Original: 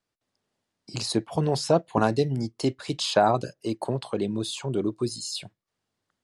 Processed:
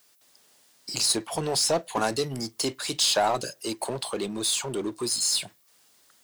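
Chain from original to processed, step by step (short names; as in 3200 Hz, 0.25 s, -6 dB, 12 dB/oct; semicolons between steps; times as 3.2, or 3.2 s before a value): RIAA curve recording; power-law curve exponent 0.7; gain -5 dB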